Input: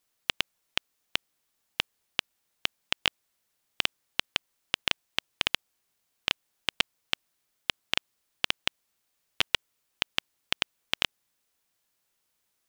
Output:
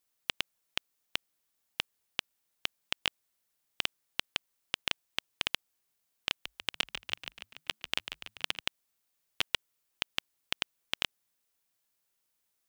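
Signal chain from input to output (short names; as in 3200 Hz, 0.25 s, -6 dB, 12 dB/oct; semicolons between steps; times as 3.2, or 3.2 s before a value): high shelf 8800 Hz +5 dB; 6.3–8.6 frequency-shifting echo 0.144 s, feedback 60%, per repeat -55 Hz, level -9 dB; gain -5.5 dB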